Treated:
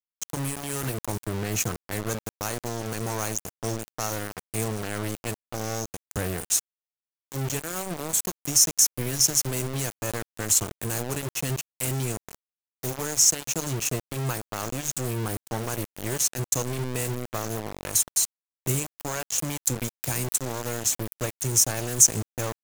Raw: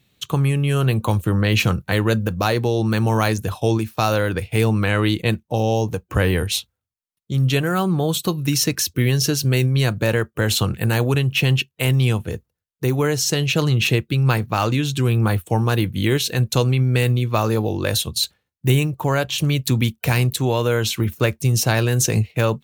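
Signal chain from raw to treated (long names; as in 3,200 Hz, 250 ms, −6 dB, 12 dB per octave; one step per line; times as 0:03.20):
high shelf with overshoot 5,000 Hz +11 dB, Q 3
centre clipping without the shift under −16 dBFS
level −10.5 dB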